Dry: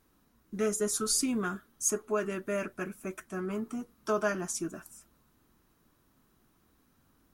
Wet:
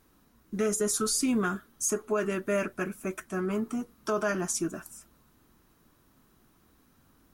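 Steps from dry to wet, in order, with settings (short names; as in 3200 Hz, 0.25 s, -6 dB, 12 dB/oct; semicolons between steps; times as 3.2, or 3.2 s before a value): limiter -23 dBFS, peak gain reduction 7 dB; gain +4.5 dB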